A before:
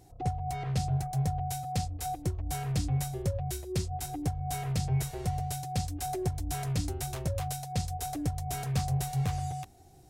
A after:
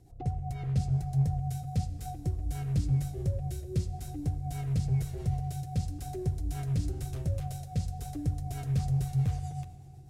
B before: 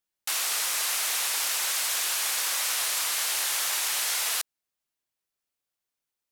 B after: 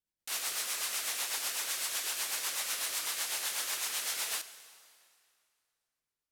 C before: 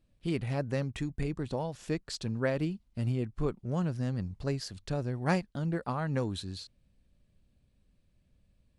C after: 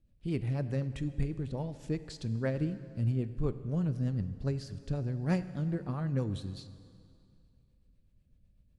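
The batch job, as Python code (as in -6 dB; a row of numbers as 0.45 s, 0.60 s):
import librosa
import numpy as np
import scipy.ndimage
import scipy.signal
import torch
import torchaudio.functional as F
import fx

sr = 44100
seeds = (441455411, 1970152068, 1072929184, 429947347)

y = fx.low_shelf(x, sr, hz=260.0, db=9.5)
y = fx.rotary(y, sr, hz=8.0)
y = fx.rev_plate(y, sr, seeds[0], rt60_s=2.4, hf_ratio=0.9, predelay_ms=0, drr_db=12.0)
y = y * 10.0 ** (-5.0 / 20.0)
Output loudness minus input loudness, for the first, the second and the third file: +0.5 LU, -7.5 LU, -0.5 LU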